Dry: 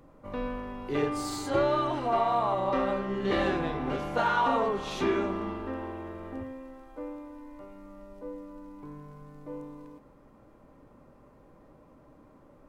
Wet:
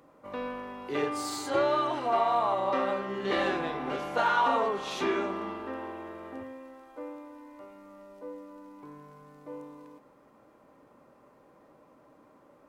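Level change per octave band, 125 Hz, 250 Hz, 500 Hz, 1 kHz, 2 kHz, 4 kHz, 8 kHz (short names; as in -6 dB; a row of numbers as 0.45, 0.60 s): -8.5, -3.5, -1.0, +0.5, +1.0, +1.5, +1.5 dB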